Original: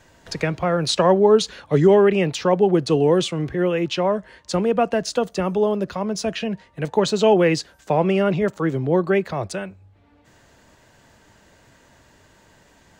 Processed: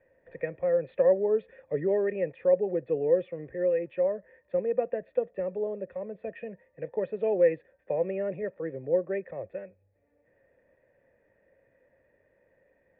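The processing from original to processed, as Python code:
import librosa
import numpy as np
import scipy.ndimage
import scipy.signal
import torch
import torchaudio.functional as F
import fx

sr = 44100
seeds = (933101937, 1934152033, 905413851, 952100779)

y = fx.formant_cascade(x, sr, vowel='e')
y = fx.high_shelf(y, sr, hz=2900.0, db=-9.0)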